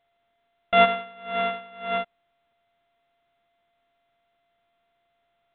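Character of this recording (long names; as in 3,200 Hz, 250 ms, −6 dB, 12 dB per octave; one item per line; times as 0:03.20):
a buzz of ramps at a fixed pitch in blocks of 64 samples
A-law companding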